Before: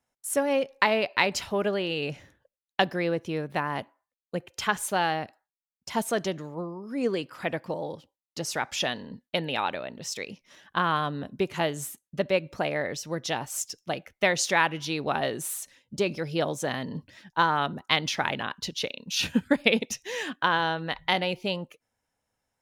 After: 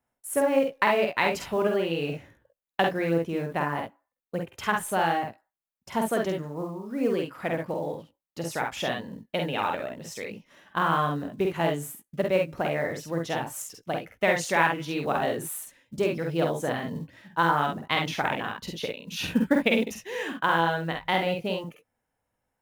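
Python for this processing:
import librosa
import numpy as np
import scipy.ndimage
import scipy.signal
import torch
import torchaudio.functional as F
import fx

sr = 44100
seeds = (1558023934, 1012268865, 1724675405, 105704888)

y = fx.peak_eq(x, sr, hz=5300.0, db=-10.5, octaves=1.6)
y = fx.quant_float(y, sr, bits=4)
y = fx.room_early_taps(y, sr, ms=(48, 66), db=(-3.5, -7.5))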